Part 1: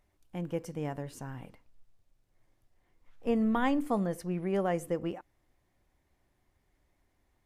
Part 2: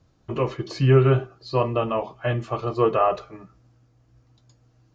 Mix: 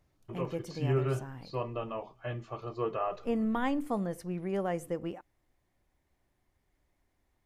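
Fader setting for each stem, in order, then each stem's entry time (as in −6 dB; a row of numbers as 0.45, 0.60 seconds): −2.5, −13.0 decibels; 0.00, 0.00 seconds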